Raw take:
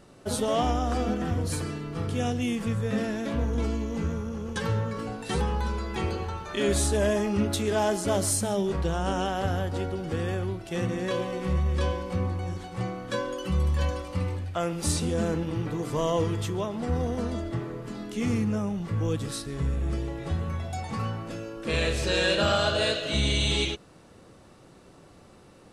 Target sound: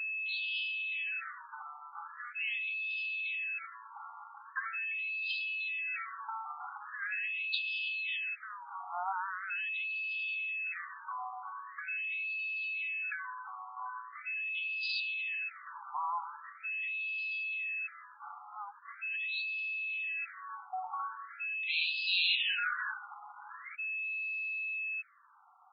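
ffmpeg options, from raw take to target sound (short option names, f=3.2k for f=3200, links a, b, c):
-af "aeval=exprs='val(0)+0.02*sin(2*PI*2600*n/s)':c=same,acrusher=bits=8:mode=log:mix=0:aa=0.000001,afftfilt=real='re*between(b*sr/1024,1000*pow(3600/1000,0.5+0.5*sin(2*PI*0.42*pts/sr))/1.41,1000*pow(3600/1000,0.5+0.5*sin(2*PI*0.42*pts/sr))*1.41)':imag='im*between(b*sr/1024,1000*pow(3600/1000,0.5+0.5*sin(2*PI*0.42*pts/sr))/1.41,1000*pow(3600/1000,0.5+0.5*sin(2*PI*0.42*pts/sr))*1.41)':win_size=1024:overlap=0.75"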